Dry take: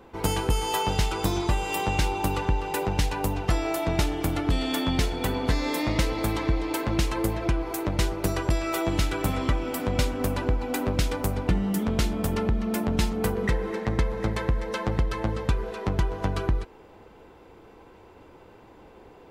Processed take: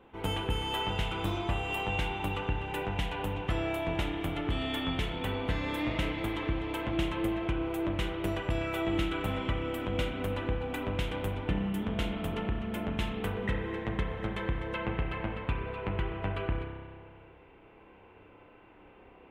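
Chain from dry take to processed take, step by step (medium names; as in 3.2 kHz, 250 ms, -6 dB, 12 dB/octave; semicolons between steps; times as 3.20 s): resonant high shelf 3.9 kHz -7 dB, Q 3, from 14.74 s -13 dB; spring tank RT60 1.7 s, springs 30 ms, chirp 65 ms, DRR 2.5 dB; trim -8 dB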